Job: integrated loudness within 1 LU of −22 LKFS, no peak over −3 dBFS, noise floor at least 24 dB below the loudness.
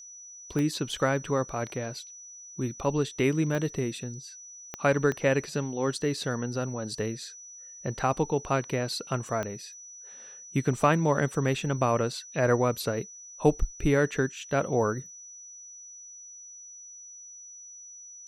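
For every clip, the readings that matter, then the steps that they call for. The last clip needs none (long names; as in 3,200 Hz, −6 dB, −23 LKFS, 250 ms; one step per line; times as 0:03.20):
number of clicks 5; interfering tone 5,900 Hz; level of the tone −44 dBFS; integrated loudness −28.5 LKFS; sample peak −9.5 dBFS; target loudness −22.0 LKFS
→ click removal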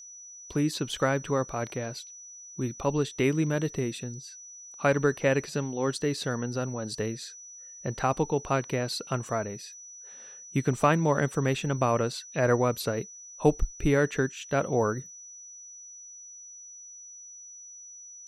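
number of clicks 0; interfering tone 5,900 Hz; level of the tone −44 dBFS
→ notch filter 5,900 Hz, Q 30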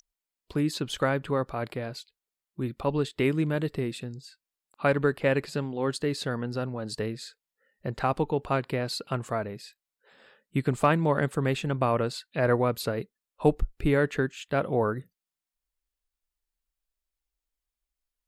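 interfering tone none found; integrated loudness −28.5 LKFS; sample peak −10.0 dBFS; target loudness −22.0 LKFS
→ level +6.5 dB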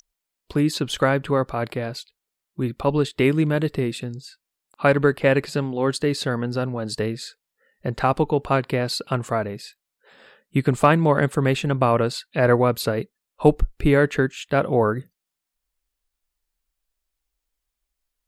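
integrated loudness −22.0 LKFS; sample peak −3.5 dBFS; background noise floor −84 dBFS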